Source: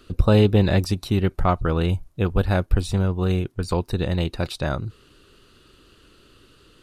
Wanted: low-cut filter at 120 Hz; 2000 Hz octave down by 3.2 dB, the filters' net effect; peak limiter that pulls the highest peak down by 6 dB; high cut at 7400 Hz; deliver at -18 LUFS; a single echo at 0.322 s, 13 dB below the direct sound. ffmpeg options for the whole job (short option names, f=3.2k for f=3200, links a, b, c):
-af "highpass=120,lowpass=7.4k,equalizer=f=2k:t=o:g=-4.5,alimiter=limit=-12dB:level=0:latency=1,aecho=1:1:322:0.224,volume=8dB"